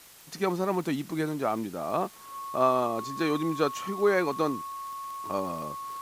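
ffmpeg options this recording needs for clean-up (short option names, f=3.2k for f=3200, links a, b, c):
-af "adeclick=t=4,bandreject=f=1.1k:w=30,afwtdn=0.0028"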